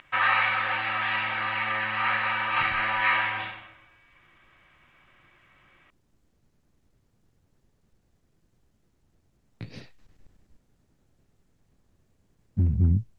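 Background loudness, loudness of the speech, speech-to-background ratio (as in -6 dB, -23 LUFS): -25.0 LUFS, -27.0 LUFS, -2.0 dB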